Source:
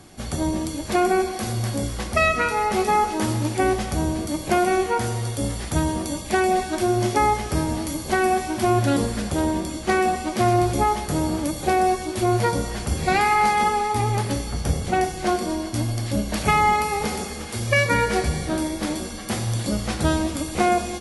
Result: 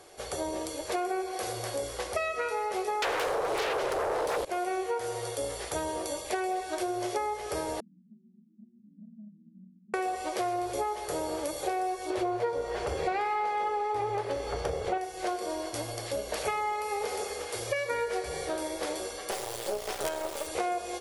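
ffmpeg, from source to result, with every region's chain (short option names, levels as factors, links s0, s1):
-filter_complex "[0:a]asettb=1/sr,asplit=3[s0][s1][s2];[s0]atrim=end=3.024[s3];[s1]atrim=start=3.02:end=4.45,asetpts=PTS-STARTPTS,afade=t=in:d=0.004:c=qsin,afade=t=out:st=1.426:d=0.004:c=qsin,bass=f=250:g=13,treble=f=4000:g=-8,acompressor=threshold=0.178:ratio=4:attack=3.2:release=140:knee=1:detection=peak,aeval=exprs='0.376*sin(PI/2*7.94*val(0)/0.376)':c=same[s4];[s2]atrim=start=4.446[s5];[s3][s4]acrossfade=d=0.004:c1=hsin:c2=qsin[s6];[s6][s5]acrossfade=d=0.004:c1=qsin:c2=hsin,asettb=1/sr,asplit=3[s7][s8][s9];[s7]atrim=end=7.804[s10];[s8]atrim=start=7.8:end=9.94,asetpts=PTS-STARTPTS,afade=t=in:d=0.004:c=qsin,afade=t=out:st=2.136:d=0.004:c=qsin,volume=11.2,asoftclip=hard,volume=0.0891,asuperpass=centerf=200:order=8:qfactor=3.5,acontrast=87[s11];[s9]atrim=start=9.936[s12];[s10][s11]acrossfade=d=0.004:c1=hsin:c2=qsin[s13];[s13][s12]acrossfade=d=0.004:c1=qsin:c2=hsin,asettb=1/sr,asplit=3[s14][s15][s16];[s14]atrim=end=12.104[s17];[s15]atrim=start=12.1:end=14.98,asetpts=PTS-STARTPTS,afade=t=in:d=0.004:c=qsin,afade=t=out:st=2.876:d=0.004:c=qsin,aemphasis=mode=reproduction:type=75fm,acontrast=89[s18];[s16]atrim=start=14.976[s19];[s17][s18]acrossfade=d=0.004:c1=hsin:c2=qsin[s20];[s20][s19]acrossfade=d=0.004:c1=qsin:c2=hsin,asettb=1/sr,asplit=3[s21][s22][s23];[s21]atrim=end=19.314[s24];[s22]atrim=start=19.31:end=20.47,asetpts=PTS-STARTPTS,afade=t=in:d=0.004:c=qsin,afade=t=out:st=1.156:d=0.004:c=qsin,equalizer=f=690:w=2:g=3.5,aecho=1:1:5.1:0.67,atrim=end_sample=51156,acrusher=bits=3:dc=4:mix=0:aa=0.000001[s25];[s23]atrim=start=20.466[s26];[s24][s25]acrossfade=d=0.004:c1=hsin:c2=qsin[s27];[s27][s26]acrossfade=d=0.004:c1=qsin:c2=hsin,lowshelf=f=320:t=q:w=3:g=-12,acompressor=threshold=0.0631:ratio=6,volume=0.596"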